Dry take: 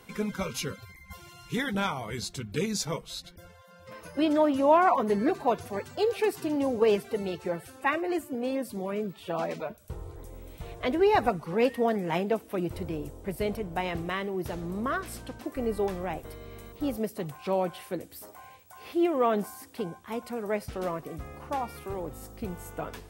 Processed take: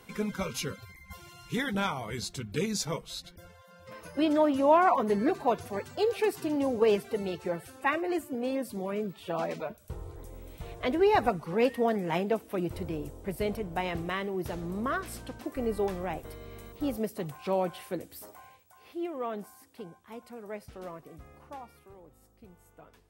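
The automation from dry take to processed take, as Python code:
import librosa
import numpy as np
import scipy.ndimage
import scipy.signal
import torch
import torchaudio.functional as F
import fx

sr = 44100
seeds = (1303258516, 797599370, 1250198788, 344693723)

y = fx.gain(x, sr, db=fx.line((18.29, -1.0), (18.82, -10.0), (21.38, -10.0), (22.0, -18.0)))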